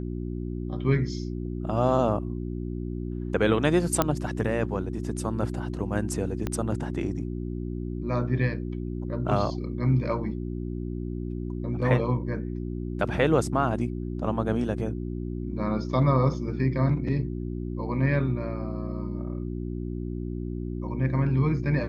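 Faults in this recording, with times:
hum 60 Hz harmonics 6 -32 dBFS
4.02 pop -7 dBFS
6.47 pop -15 dBFS

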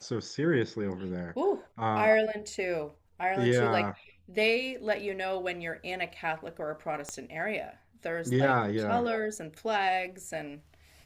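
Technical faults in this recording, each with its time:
7.09 pop -22 dBFS

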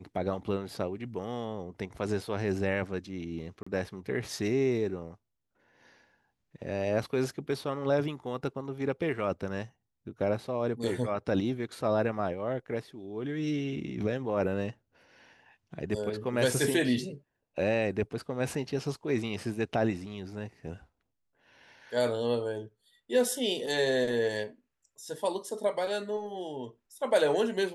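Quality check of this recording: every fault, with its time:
3.63–3.67 gap 35 ms

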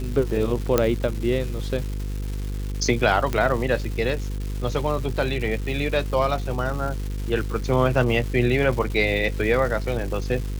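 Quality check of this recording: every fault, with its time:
buzz 50 Hz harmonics 10 -28 dBFS
crackle 570/s -31 dBFS
0.78 pop -4 dBFS
3.33 pop -11 dBFS

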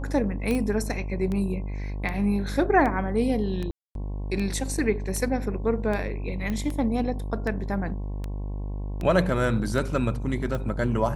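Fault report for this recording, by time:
buzz 50 Hz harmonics 22 -31 dBFS
tick 78 rpm -19 dBFS
0.51 pop -15 dBFS
3.71–3.95 gap 0.242 s
6.5 pop -18 dBFS

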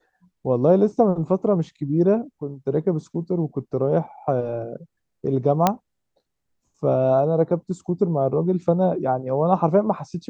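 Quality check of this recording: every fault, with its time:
5.67 pop -3 dBFS

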